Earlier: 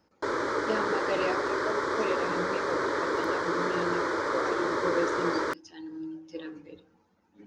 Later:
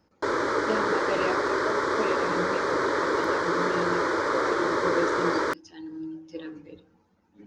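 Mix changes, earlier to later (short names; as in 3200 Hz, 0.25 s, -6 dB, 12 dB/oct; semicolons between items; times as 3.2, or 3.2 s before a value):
speech: add low shelf 210 Hz +6 dB; background +3.5 dB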